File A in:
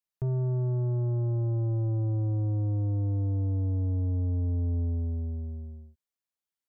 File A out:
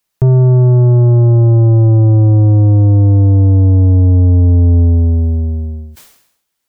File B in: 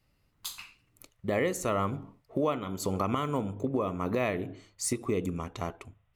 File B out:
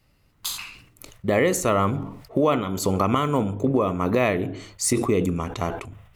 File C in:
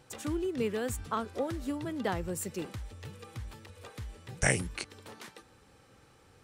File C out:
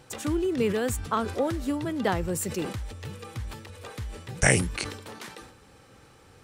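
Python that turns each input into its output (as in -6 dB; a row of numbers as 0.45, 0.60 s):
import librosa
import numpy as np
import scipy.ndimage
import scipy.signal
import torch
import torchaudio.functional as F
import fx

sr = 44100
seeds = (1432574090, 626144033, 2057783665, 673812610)

y = fx.sustainer(x, sr, db_per_s=74.0)
y = y * 10.0 ** (-6 / 20.0) / np.max(np.abs(y))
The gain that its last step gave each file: +20.0, +8.0, +6.0 dB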